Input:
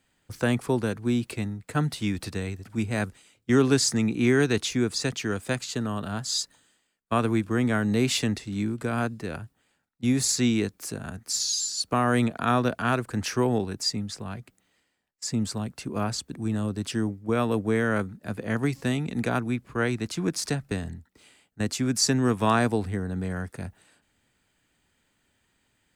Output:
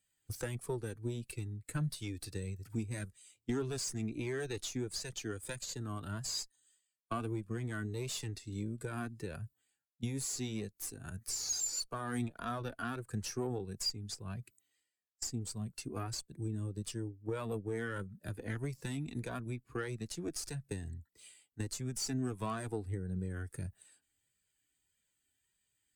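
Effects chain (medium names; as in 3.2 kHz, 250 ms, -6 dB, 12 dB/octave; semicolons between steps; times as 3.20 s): pre-emphasis filter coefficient 0.8; valve stage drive 34 dB, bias 0.7; compression 4:1, threshold -54 dBFS, peak gain reduction 16 dB; flange 1.6 Hz, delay 1.6 ms, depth 1.2 ms, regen -52%; spectral contrast expander 1.5:1; trim +15.5 dB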